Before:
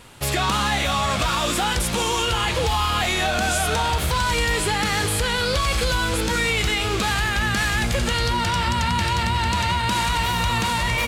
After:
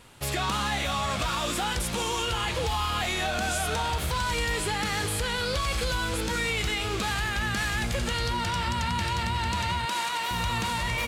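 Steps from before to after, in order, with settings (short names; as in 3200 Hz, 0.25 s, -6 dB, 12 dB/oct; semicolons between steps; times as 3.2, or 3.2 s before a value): 9.85–10.31 HPF 370 Hz 12 dB/oct; gain -6.5 dB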